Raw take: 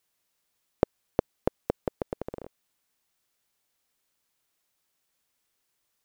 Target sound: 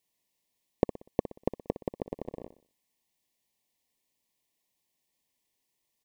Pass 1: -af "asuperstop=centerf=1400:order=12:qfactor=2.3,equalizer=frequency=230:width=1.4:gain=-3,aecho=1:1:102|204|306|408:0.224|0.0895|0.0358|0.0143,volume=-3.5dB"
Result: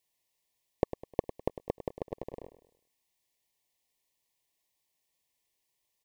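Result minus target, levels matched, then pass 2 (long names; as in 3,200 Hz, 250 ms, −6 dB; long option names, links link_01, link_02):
echo 41 ms late; 250 Hz band −3.0 dB
-af "asuperstop=centerf=1400:order=12:qfactor=2.3,equalizer=frequency=230:width=1.4:gain=4.5,aecho=1:1:61|122|183|244:0.224|0.0895|0.0358|0.0143,volume=-3.5dB"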